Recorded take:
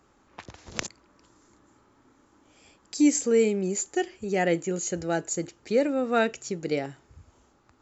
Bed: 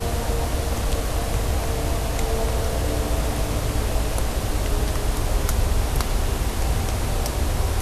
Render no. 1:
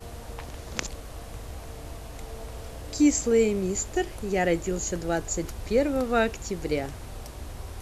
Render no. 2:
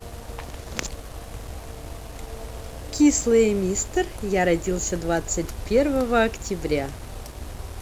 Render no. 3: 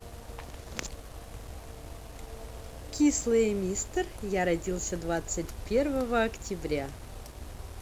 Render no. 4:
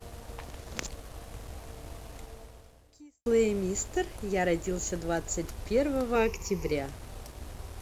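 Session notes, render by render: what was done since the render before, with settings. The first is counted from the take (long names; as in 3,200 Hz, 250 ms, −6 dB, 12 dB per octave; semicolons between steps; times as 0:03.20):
mix in bed −16 dB
leveller curve on the samples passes 1
level −7 dB
0:02.13–0:03.26: fade out quadratic; 0:06.15–0:06.72: EQ curve with evenly spaced ripples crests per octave 0.8, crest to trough 12 dB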